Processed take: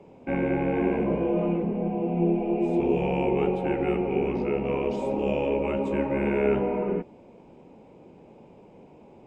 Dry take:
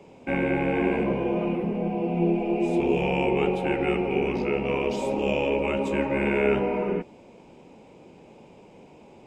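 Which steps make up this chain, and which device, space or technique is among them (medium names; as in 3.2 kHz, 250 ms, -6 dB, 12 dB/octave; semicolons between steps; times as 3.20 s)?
1.10–1.63 s: doubling 18 ms -4.5 dB; through cloth (treble shelf 2 kHz -12 dB)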